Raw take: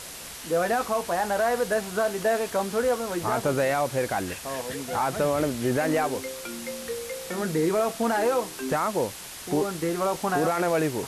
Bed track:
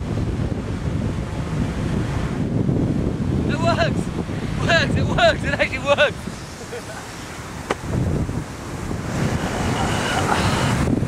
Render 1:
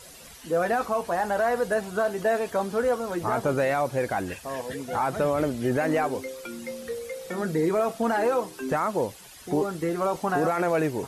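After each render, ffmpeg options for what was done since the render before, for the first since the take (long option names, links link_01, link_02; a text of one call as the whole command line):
ffmpeg -i in.wav -af "afftdn=noise_reduction=11:noise_floor=-40" out.wav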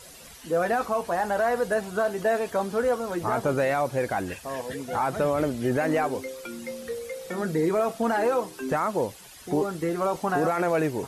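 ffmpeg -i in.wav -af anull out.wav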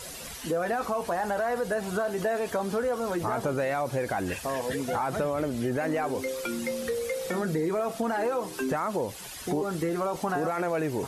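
ffmpeg -i in.wav -filter_complex "[0:a]asplit=2[link_01][link_02];[link_02]alimiter=level_in=2.5dB:limit=-24dB:level=0:latency=1:release=25,volume=-2.5dB,volume=0.5dB[link_03];[link_01][link_03]amix=inputs=2:normalize=0,acompressor=threshold=-27dB:ratio=3" out.wav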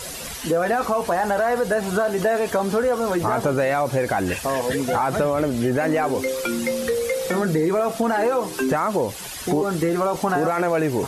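ffmpeg -i in.wav -af "volume=7.5dB" out.wav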